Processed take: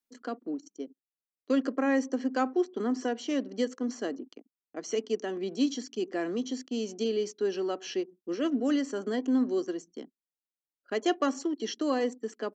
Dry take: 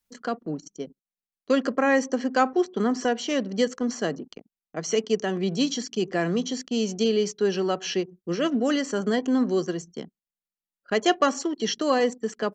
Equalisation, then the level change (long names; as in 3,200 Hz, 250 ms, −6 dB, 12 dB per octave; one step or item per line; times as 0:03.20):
low shelf with overshoot 190 Hz −12.5 dB, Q 3
−9.0 dB